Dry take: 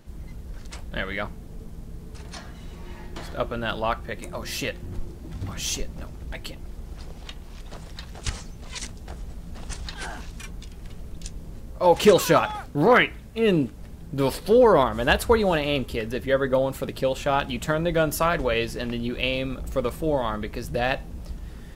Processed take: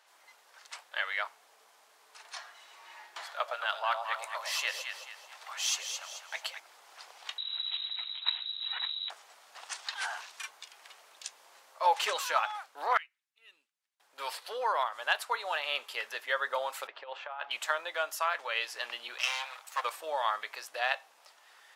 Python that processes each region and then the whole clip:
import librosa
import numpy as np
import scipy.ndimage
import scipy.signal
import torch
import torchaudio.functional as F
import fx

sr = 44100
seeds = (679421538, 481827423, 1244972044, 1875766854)

y = fx.chain(x, sr, fx.highpass(hz=480.0, slope=24),
    fx.echo_alternate(ms=109, hz=830.0, feedback_pct=61, wet_db=-3), at=(3.26, 6.6))
y = fx.chain(y, sr, fx.air_absorb(metres=70.0),
    fx.freq_invert(carrier_hz=3900), at=(7.38, 9.1))
y = fx.chain(y, sr, fx.tone_stack(knobs='6-0-2'),
    fx.upward_expand(threshold_db=-53.0, expansion=1.5), at=(12.97, 14.0))
y = fx.chain(y, sr, fx.highpass(hz=520.0, slope=6),
    fx.over_compress(threshold_db=-28.0, ratio=-0.5),
    fx.spacing_loss(db_at_10k=44), at=(16.87, 17.51))
y = fx.chain(y, sr, fx.lower_of_two(delay_ms=6.3),
    fx.highpass(hz=750.0, slope=12), at=(19.18, 19.84))
y = scipy.signal.sosfilt(scipy.signal.butter(4, 800.0, 'highpass', fs=sr, output='sos'), y)
y = fx.high_shelf(y, sr, hz=10000.0, db=-9.5)
y = fx.rider(y, sr, range_db=4, speed_s=0.5)
y = F.gain(torch.from_numpy(y), -2.5).numpy()